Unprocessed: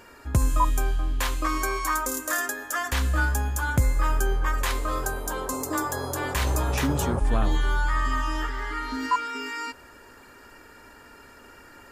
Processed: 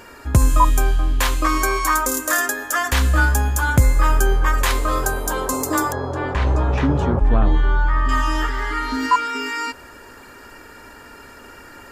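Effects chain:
0:05.92–0:08.09: head-to-tape spacing loss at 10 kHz 30 dB
level +7.5 dB

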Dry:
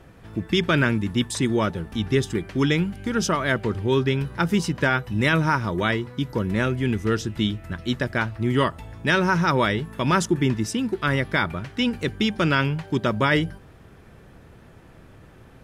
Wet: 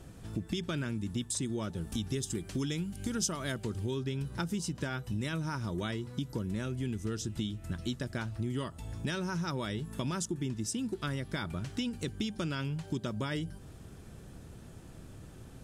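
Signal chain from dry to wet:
octave-band graphic EQ 500/1,000/2,000/8,000 Hz −4/−5/−8/+8 dB
downward compressor 6 to 1, threshold −32 dBFS, peak gain reduction 14 dB
0:01.81–0:03.91: high-shelf EQ 5,300 Hz +7 dB

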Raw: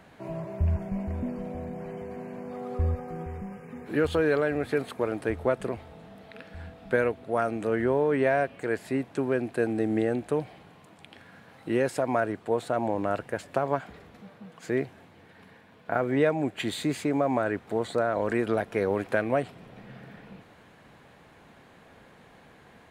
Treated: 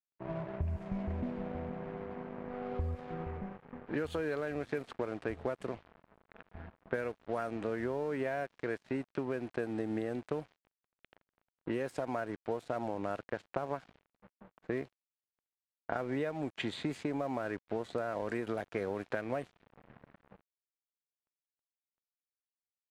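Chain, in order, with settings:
dead-zone distortion −43 dBFS
low-pass that shuts in the quiet parts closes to 1,500 Hz, open at −22.5 dBFS
downward compressor 6 to 1, threshold −32 dBFS, peak gain reduction 13 dB

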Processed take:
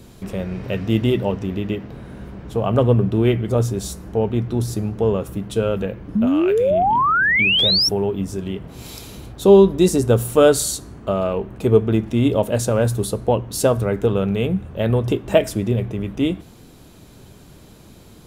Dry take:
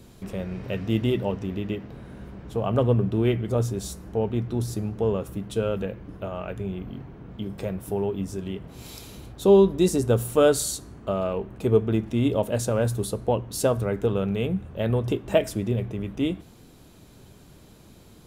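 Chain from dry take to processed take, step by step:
0:06.27–0:06.71: tilt shelving filter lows −8.5 dB, about 1,100 Hz
0:06.15–0:07.89: sound drawn into the spectrogram rise 200–5,700 Hz −22 dBFS
level +5.5 dB

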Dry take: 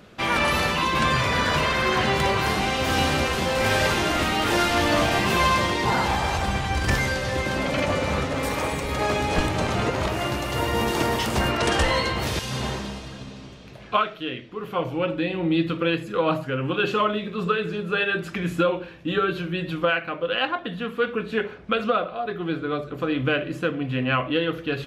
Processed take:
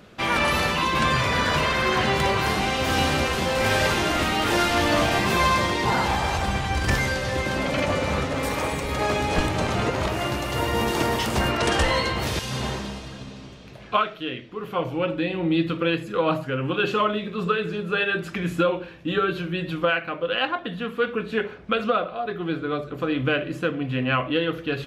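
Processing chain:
0:05.18–0:05.74: notch filter 2,900 Hz, Q 12

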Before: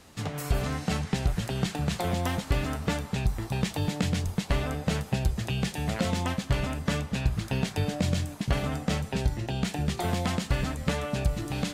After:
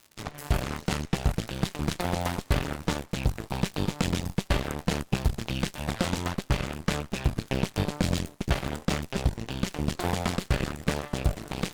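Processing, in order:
surface crackle 220 per second −35 dBFS
harmonic generator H 6 −15 dB, 7 −18 dB, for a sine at −13.5 dBFS

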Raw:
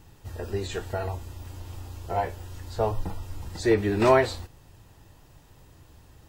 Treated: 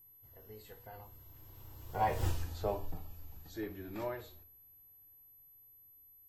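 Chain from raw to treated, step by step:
source passing by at 0:02.26, 25 m/s, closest 1.3 metres
rectangular room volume 220 cubic metres, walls furnished, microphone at 0.58 metres
steady tone 12,000 Hz −66 dBFS
level +8 dB

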